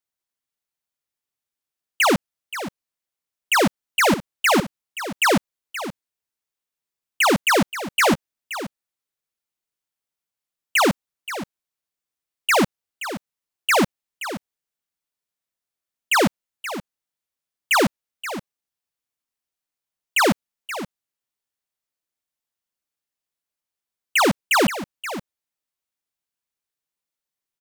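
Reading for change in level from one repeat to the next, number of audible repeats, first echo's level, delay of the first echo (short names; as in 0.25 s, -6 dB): no steady repeat, 1, -12.5 dB, 0.526 s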